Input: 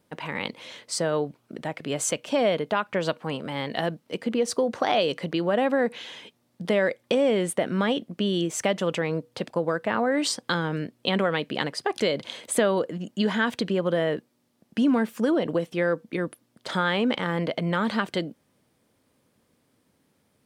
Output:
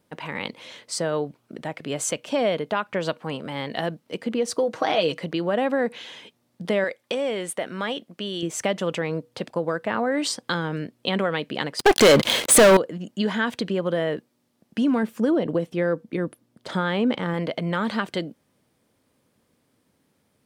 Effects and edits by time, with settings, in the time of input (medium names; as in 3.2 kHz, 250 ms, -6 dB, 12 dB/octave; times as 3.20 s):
4.57–5.20 s: comb 6.3 ms, depth 53%
6.84–8.43 s: bass shelf 400 Hz -10.5 dB
11.79–12.77 s: waveshaping leveller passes 5
15.03–17.34 s: tilt shelf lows +3.5 dB, about 680 Hz